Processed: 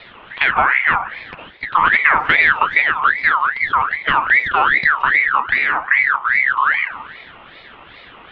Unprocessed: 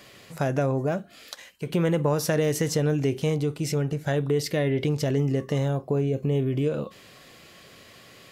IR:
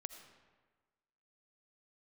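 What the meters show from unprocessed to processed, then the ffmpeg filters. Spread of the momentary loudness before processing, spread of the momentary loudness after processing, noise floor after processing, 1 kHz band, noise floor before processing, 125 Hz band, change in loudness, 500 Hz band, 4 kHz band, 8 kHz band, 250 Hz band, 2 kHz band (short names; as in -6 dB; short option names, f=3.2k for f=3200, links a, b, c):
9 LU, 7 LU, -42 dBFS, +21.5 dB, -51 dBFS, -15.5 dB, +11.0 dB, -8.5 dB, +8.5 dB, under -30 dB, -11.0 dB, +26.0 dB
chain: -filter_complex "[0:a]asplit=2[a][b];[1:a]atrim=start_sample=2205[c];[b][c]afir=irnorm=-1:irlink=0,volume=7.5dB[d];[a][d]amix=inputs=2:normalize=0,highpass=f=180:t=q:w=0.5412,highpass=f=180:t=q:w=1.307,lowpass=f=2.2k:t=q:w=0.5176,lowpass=f=2.2k:t=q:w=0.7071,lowpass=f=2.2k:t=q:w=1.932,afreqshift=-300,acontrast=51,aeval=exprs='val(0)*sin(2*PI*1600*n/s+1600*0.35/2.5*sin(2*PI*2.5*n/s))':c=same,volume=1dB"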